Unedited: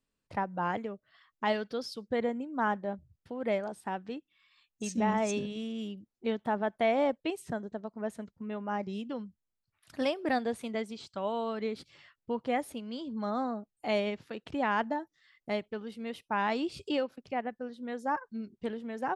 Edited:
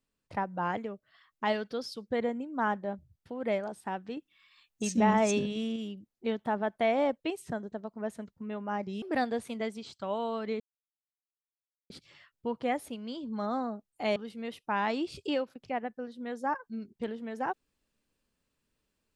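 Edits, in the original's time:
4.17–5.76 s: gain +4 dB
9.02–10.16 s: delete
11.74 s: insert silence 1.30 s
14.00–15.78 s: delete

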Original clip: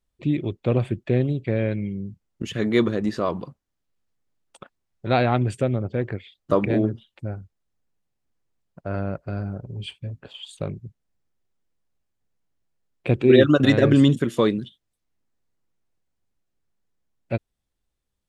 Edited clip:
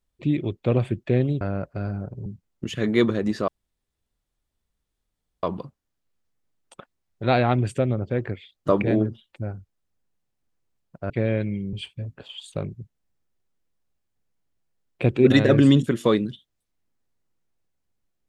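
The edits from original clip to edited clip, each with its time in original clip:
1.41–2.04 s: swap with 8.93–9.78 s
3.26 s: insert room tone 1.95 s
13.32–13.60 s: delete

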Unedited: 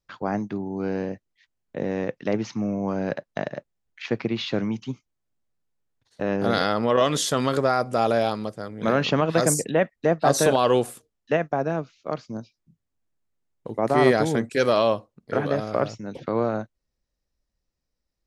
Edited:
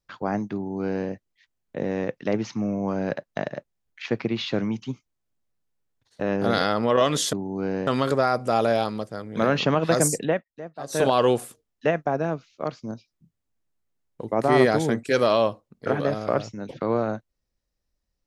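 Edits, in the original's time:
0.54–1.08 s: copy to 7.33 s
9.73–10.52 s: dip -16.5 dB, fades 0.17 s

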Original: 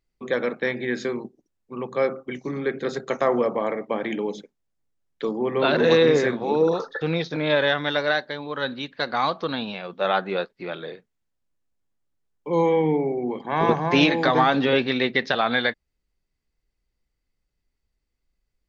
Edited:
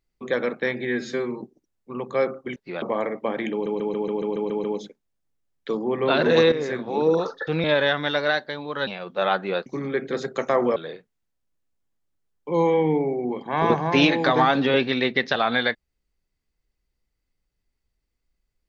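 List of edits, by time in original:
0.87–1.23 s: stretch 1.5×
2.38–3.48 s: swap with 10.49–10.75 s
4.18 s: stutter 0.14 s, 9 plays
6.06–6.60 s: fade in, from -12 dB
7.18–7.45 s: delete
8.68–9.70 s: delete

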